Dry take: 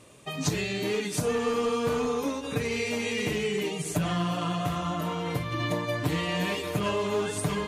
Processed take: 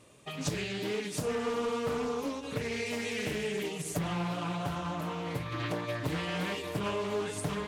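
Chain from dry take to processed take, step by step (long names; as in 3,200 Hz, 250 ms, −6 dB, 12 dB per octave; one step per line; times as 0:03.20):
0:02.86–0:03.99: high-shelf EQ 11,000 Hz +8 dB
highs frequency-modulated by the lows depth 0.64 ms
level −5 dB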